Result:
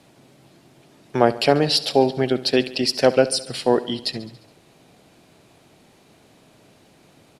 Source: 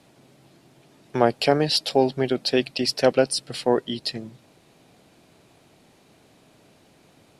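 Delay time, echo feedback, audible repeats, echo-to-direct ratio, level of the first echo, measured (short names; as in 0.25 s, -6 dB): 70 ms, 60%, 5, -15.0 dB, -17.0 dB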